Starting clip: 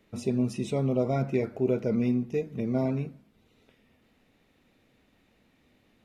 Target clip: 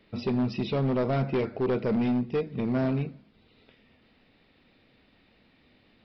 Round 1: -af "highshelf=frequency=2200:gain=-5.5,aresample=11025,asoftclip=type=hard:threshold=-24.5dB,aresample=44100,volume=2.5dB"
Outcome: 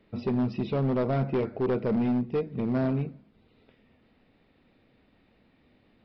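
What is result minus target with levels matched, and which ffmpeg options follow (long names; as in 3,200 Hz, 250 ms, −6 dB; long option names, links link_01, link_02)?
4,000 Hz band −6.0 dB
-af "highshelf=frequency=2200:gain=5,aresample=11025,asoftclip=type=hard:threshold=-24.5dB,aresample=44100,volume=2.5dB"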